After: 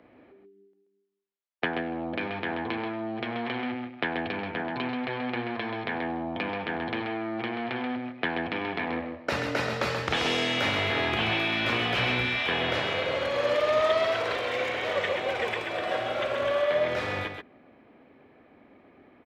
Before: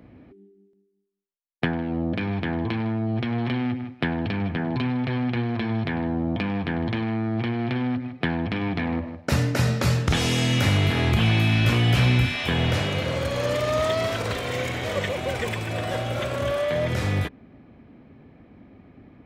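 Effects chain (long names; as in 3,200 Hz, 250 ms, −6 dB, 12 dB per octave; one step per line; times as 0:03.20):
three-way crossover with the lows and the highs turned down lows −18 dB, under 330 Hz, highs −16 dB, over 4,400 Hz
single-tap delay 132 ms −6.5 dB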